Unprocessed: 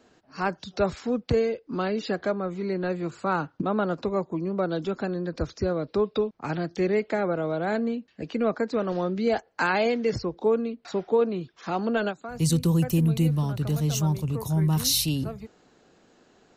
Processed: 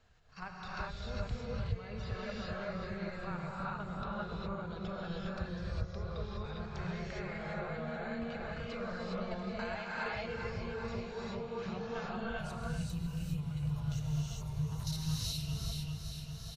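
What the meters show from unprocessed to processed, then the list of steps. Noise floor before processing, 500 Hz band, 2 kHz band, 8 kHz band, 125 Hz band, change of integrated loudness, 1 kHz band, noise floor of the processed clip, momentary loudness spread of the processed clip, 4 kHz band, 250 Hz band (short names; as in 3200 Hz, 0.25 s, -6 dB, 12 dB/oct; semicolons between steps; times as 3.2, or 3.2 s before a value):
-62 dBFS, -16.0 dB, -9.0 dB, -15.5 dB, -10.0 dB, -13.0 dB, -11.5 dB, -46 dBFS, 5 LU, -10.5 dB, -13.5 dB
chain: passive tone stack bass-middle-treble 10-0-10; on a send: feedback echo 0.397 s, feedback 46%, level -9 dB; on the sum: level quantiser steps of 12 dB; RIAA curve playback; compressor 3:1, threshold -45 dBFS, peak gain reduction 18 dB; non-linear reverb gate 0.44 s rising, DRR -6.5 dB; gain +1.5 dB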